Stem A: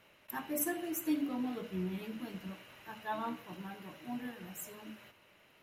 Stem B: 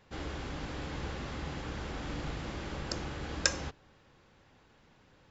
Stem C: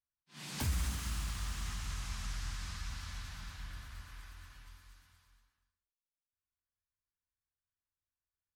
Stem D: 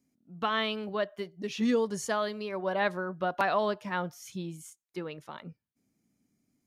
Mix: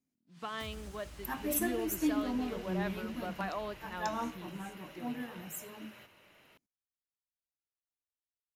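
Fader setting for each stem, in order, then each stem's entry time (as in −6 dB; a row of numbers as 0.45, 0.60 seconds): +2.0, −18.0, −13.5, −11.0 decibels; 0.95, 0.60, 0.00, 0.00 seconds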